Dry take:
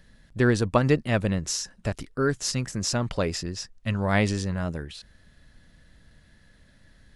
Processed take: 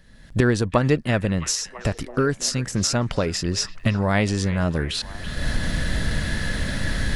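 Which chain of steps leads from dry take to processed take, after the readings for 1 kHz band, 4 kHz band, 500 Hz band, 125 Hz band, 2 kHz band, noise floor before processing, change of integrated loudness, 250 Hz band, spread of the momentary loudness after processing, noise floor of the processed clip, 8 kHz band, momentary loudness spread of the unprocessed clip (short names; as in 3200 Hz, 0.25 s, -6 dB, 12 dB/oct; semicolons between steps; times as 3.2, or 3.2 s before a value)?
+3.0 dB, +6.5 dB, +2.5 dB, +4.5 dB, +5.0 dB, -58 dBFS, +2.5 dB, +4.0 dB, 7 LU, -44 dBFS, +5.5 dB, 11 LU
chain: recorder AGC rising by 31 dB/s; on a send: delay with a stepping band-pass 0.333 s, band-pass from 2500 Hz, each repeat -0.7 oct, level -10.5 dB; on the sum: gain +1.5 dB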